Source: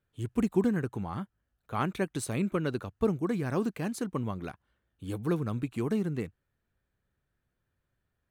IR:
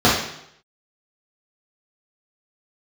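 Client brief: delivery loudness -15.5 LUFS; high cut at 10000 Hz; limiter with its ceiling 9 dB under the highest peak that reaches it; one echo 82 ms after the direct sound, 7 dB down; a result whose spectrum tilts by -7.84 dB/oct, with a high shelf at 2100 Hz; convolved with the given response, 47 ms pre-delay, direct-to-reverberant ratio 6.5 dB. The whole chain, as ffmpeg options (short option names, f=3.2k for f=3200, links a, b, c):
-filter_complex "[0:a]lowpass=10k,highshelf=f=2.1k:g=-8.5,alimiter=level_in=0.5dB:limit=-24dB:level=0:latency=1,volume=-0.5dB,aecho=1:1:82:0.447,asplit=2[a][b];[1:a]atrim=start_sample=2205,adelay=47[c];[b][c]afir=irnorm=-1:irlink=0,volume=-31dB[d];[a][d]amix=inputs=2:normalize=0,volume=16dB"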